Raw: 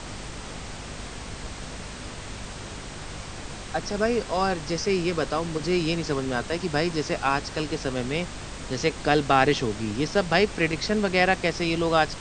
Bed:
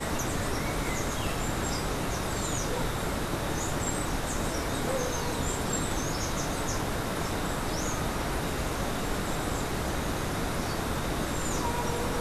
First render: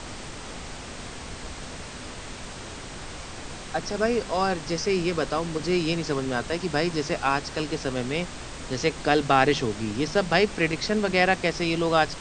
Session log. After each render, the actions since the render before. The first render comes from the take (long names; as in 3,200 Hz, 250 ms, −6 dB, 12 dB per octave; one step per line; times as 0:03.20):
hum removal 50 Hz, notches 4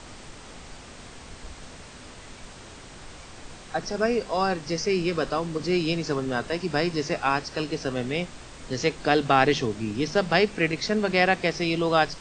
noise reduction from a noise print 6 dB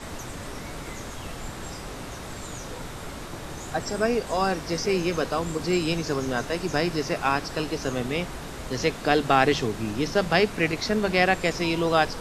mix in bed −7 dB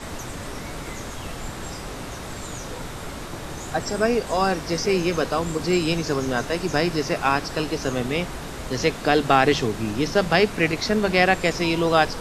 level +3 dB
brickwall limiter −3 dBFS, peak gain reduction 2 dB